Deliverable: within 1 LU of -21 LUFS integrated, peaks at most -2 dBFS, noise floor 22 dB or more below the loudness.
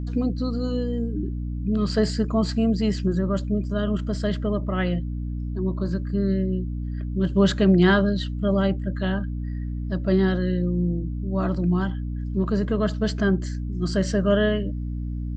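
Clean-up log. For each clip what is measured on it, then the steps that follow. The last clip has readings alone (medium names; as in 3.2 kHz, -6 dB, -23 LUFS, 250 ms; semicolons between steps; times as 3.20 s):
hum 60 Hz; highest harmonic 300 Hz; hum level -26 dBFS; loudness -24.5 LUFS; peak level -6.0 dBFS; loudness target -21.0 LUFS
-> hum notches 60/120/180/240/300 Hz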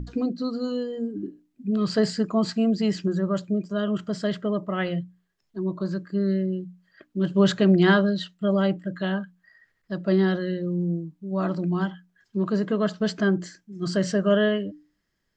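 hum not found; loudness -25.0 LUFS; peak level -7.0 dBFS; loudness target -21.0 LUFS
-> trim +4 dB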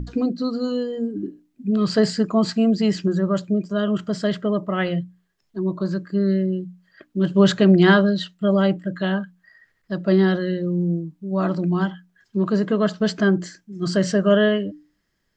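loudness -21.0 LUFS; peak level -3.0 dBFS; noise floor -70 dBFS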